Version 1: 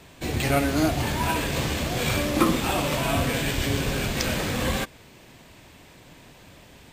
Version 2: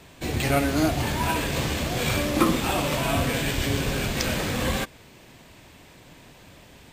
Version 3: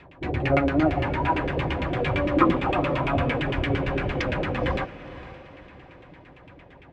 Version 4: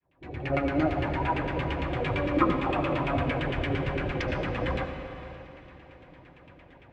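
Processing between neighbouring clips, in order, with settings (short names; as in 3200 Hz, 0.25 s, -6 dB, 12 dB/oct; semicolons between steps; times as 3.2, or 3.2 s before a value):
nothing audible
LFO low-pass saw down 8.8 Hz 340–2800 Hz; notch comb 220 Hz; diffused feedback echo 0.499 s, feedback 43%, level -15 dB
opening faded in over 0.70 s; on a send at -7 dB: reverb RT60 2.3 s, pre-delay 70 ms; on the sum: gain -4.5 dB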